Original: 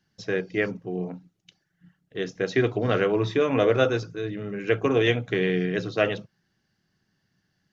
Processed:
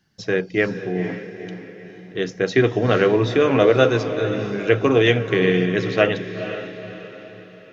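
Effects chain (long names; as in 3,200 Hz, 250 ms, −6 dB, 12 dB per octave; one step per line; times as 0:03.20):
feedback delay with all-pass diffusion 485 ms, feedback 46%, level −10 dB
level +5.5 dB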